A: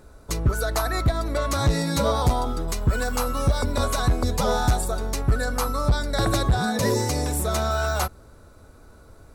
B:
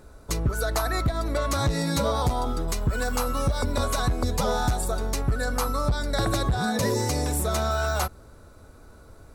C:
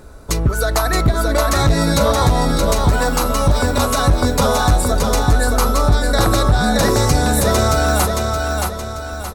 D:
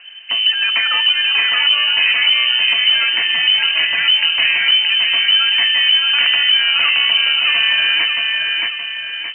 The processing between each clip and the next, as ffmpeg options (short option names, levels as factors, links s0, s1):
-af "acompressor=threshold=0.1:ratio=6"
-af "aecho=1:1:623|1246|1869|2492|3115:0.668|0.287|0.124|0.0531|0.0228,volume=2.66"
-af "asoftclip=type=tanh:threshold=0.422,lowpass=f=2600:t=q:w=0.5098,lowpass=f=2600:t=q:w=0.6013,lowpass=f=2600:t=q:w=0.9,lowpass=f=2600:t=q:w=2.563,afreqshift=-3100,volume=1.19"